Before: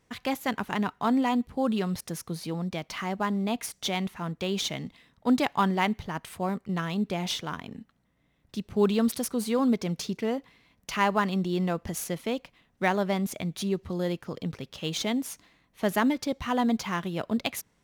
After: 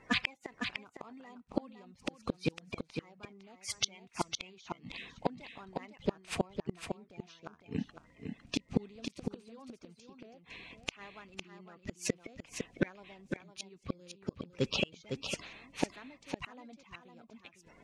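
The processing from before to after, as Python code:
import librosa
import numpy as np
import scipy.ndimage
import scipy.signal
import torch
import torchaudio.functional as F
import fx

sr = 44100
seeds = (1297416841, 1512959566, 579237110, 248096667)

y = fx.spec_quant(x, sr, step_db=30)
y = scipy.signal.sosfilt(scipy.signal.butter(4, 8200.0, 'lowpass', fs=sr, output='sos'), y)
y = fx.peak_eq(y, sr, hz=2500.0, db=8.5, octaves=0.35)
y = fx.gate_flip(y, sr, shuts_db=-25.0, range_db=-36)
y = y + 10.0 ** (-6.5 / 20.0) * np.pad(y, (int(506 * sr / 1000.0), 0))[:len(y)]
y = y * 10.0 ** (9.0 / 20.0)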